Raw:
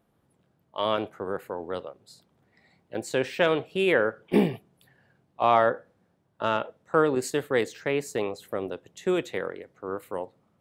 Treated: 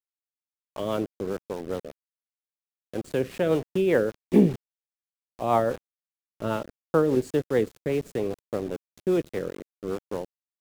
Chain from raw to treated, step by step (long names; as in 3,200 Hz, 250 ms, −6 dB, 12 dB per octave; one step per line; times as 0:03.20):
bit reduction 6 bits
tilt shelving filter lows +7 dB, about 690 Hz
rotating-speaker cabinet horn 5 Hz